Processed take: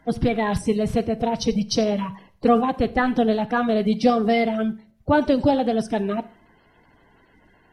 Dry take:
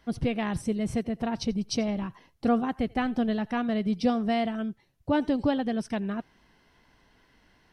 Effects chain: coarse spectral quantiser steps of 30 dB; Schroeder reverb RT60 0.47 s, combs from 32 ms, DRR 16 dB; tape noise reduction on one side only decoder only; trim +7.5 dB

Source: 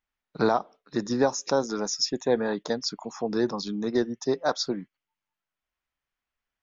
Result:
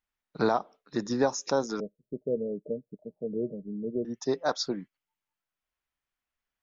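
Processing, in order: 1.80–4.05 s: rippled Chebyshev low-pass 630 Hz, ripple 6 dB; trim -2.5 dB

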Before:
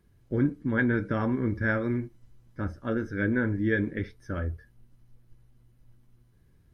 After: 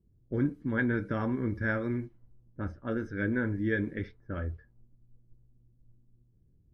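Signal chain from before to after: level-controlled noise filter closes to 350 Hz, open at -25 dBFS; trim -3.5 dB

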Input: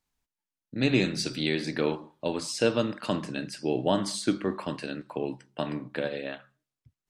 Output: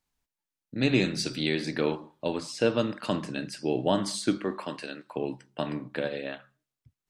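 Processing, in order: 2.38–2.78 s: treble shelf 4.7 kHz -8.5 dB; 4.38–5.14 s: high-pass 180 Hz -> 740 Hz 6 dB/octave

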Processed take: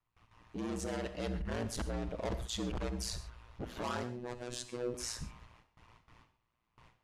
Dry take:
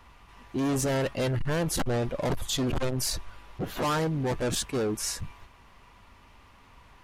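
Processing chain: gate with hold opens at -43 dBFS; low-pass 8.8 kHz 12 dB/octave; gain riding 0.5 s; ring modulator 58 Hz; 4.03–4.94 s: robot voice 122 Hz; reverberation, pre-delay 30 ms, DRR 11 dB; trim -6.5 dB

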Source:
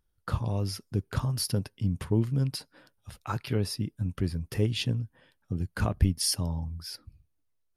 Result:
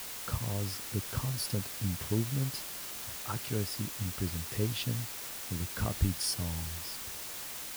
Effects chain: word length cut 6-bit, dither triangular; trim -5.5 dB

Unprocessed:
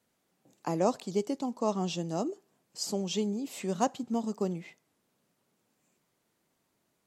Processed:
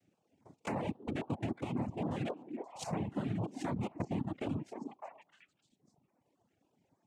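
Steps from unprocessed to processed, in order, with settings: median filter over 25 samples; low-pass that closes with the level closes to 540 Hz, closed at -29 dBFS; peaking EQ 520 Hz -7 dB 0.37 oct; peak limiter -28 dBFS, peak gain reduction 8 dB; wavefolder -32.5 dBFS; noise-vocoded speech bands 4; repeats whose band climbs or falls 303 ms, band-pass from 320 Hz, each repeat 1.4 oct, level -4.5 dB; reverb removal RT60 1.2 s; compression 4:1, threshold -41 dBFS, peak gain reduction 9.5 dB; step-sequenced notch 7.4 Hz 980–3300 Hz; trim +8.5 dB

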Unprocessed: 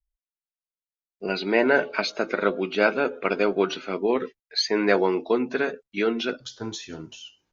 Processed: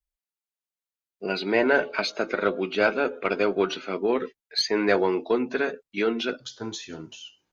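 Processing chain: single-diode clipper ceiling -5 dBFS; bass shelf 84 Hz -7.5 dB; band-stop 5.5 kHz, Q 24

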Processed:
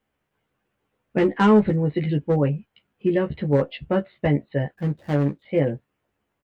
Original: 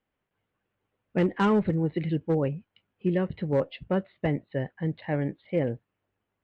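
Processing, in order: 4.74–5.42 s: median filter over 41 samples; doubling 14 ms -4 dB; trim +4 dB

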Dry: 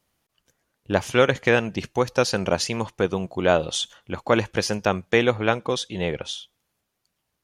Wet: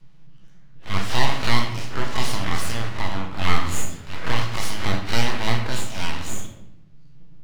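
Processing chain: spectral blur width 98 ms; three-band isolator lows -14 dB, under 590 Hz, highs -22 dB, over 5.9 kHz; in parallel at +2.5 dB: compression, threshold -32 dBFS, peak gain reduction 12.5 dB; on the sum: band noise 57–96 Hz -52 dBFS; full-wave rectifier; on a send at -3 dB: reverberation RT60 0.80 s, pre-delay 5 ms; on the sum: trim +1.5 dB

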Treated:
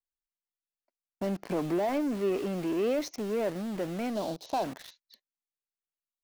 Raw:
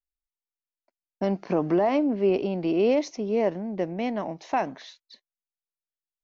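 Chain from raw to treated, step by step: in parallel at -4.5 dB: companded quantiser 2-bit; 4.15–4.64 s: on the sum: graphic EQ 500/2000/4000 Hz +5/-12/+11 dB; trim -9 dB

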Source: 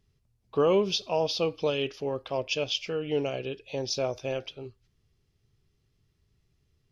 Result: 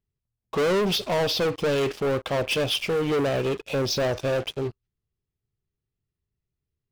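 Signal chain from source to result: low-pass 2.3 kHz 6 dB/octave; waveshaping leveller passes 5; trim -4 dB

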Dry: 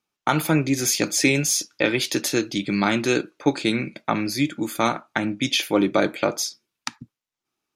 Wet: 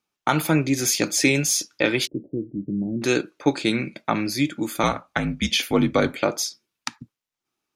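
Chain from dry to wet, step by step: 2.07–3.02 s: Gaussian low-pass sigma 23 samples; 4.83–6.20 s: frequency shift -56 Hz

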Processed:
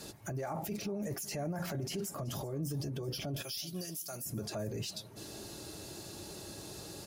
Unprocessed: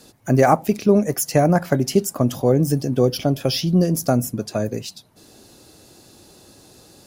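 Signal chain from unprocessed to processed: 3.42–4.26 s: pre-emphasis filter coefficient 0.97; peak limiter -32.5 dBFS, peak gain reduction 29 dB; comb of notches 250 Hz; delay 380 ms -19 dB; trim +3 dB

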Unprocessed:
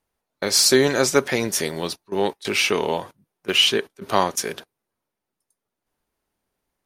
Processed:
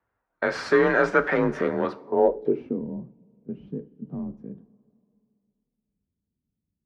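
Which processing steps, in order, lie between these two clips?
1.37–1.85 s: tilt shelf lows +5.5 dB, about 810 Hz; in parallel at -6 dB: wavefolder -16 dBFS; on the sum: two-slope reverb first 0.32 s, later 2.6 s, from -18 dB, DRR 9.5 dB; low-pass sweep 1.5 kHz -> 160 Hz, 1.83–2.87 s; frequency shift +34 Hz; trim -4.5 dB

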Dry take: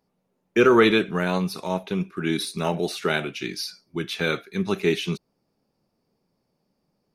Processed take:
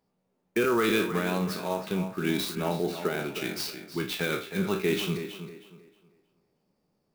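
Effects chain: spectral sustain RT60 0.33 s; peak limiter -12.5 dBFS, peak gain reduction 8.5 dB; 2.55–3.35 s: treble shelf 2.7 kHz -9.5 dB; tape echo 316 ms, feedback 33%, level -8.5 dB, low-pass 3.3 kHz; sampling jitter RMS 0.022 ms; trim -3.5 dB

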